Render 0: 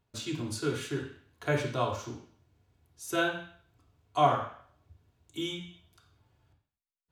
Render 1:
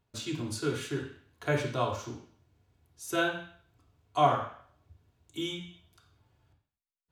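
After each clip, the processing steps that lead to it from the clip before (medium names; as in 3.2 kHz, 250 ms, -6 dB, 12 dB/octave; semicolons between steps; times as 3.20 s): no audible change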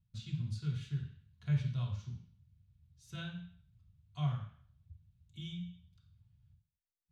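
FFT filter 190 Hz 0 dB, 290 Hz -30 dB, 770 Hz -28 dB, 3.8 kHz -13 dB, 11 kHz -28 dB; trim +2.5 dB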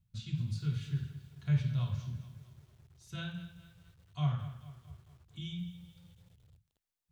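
bit-crushed delay 217 ms, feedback 55%, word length 10-bit, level -14 dB; trim +2.5 dB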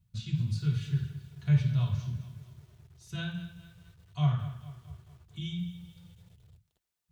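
comb of notches 270 Hz; trim +5 dB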